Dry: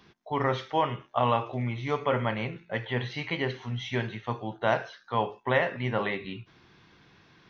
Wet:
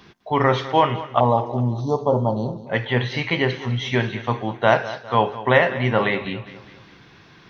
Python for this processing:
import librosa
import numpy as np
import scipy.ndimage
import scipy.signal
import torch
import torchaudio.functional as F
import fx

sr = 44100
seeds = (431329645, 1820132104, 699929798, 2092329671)

p1 = fx.cheby1_bandstop(x, sr, low_hz=920.0, high_hz=4400.0, order=3, at=(1.2, 2.67))
p2 = p1 + fx.echo_feedback(p1, sr, ms=203, feedback_pct=47, wet_db=-15.5, dry=0)
y = F.gain(torch.from_numpy(p2), 9.0).numpy()